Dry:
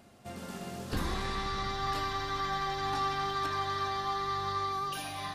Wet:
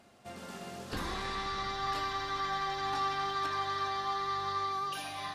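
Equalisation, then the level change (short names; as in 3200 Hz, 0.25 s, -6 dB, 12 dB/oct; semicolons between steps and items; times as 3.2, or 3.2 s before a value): low shelf 280 Hz -8 dB; high shelf 11000 Hz -9 dB; 0.0 dB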